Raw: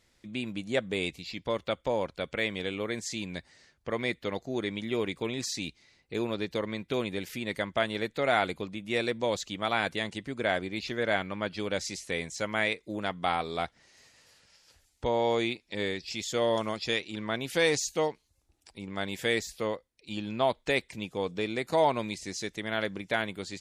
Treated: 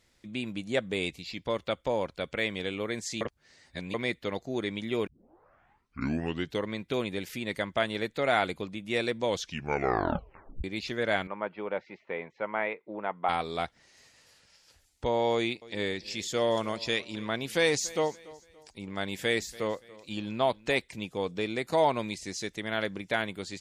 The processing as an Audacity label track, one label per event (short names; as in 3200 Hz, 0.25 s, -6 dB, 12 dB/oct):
3.210000	3.940000	reverse
5.070000	5.070000	tape start 1.59 s
9.270000	9.270000	tape stop 1.37 s
11.270000	13.290000	speaker cabinet 260–2100 Hz, peaks and dips at 280 Hz -6 dB, 920 Hz +6 dB, 1700 Hz -5 dB
15.330000	20.790000	feedback echo 0.286 s, feedback 37%, level -20.5 dB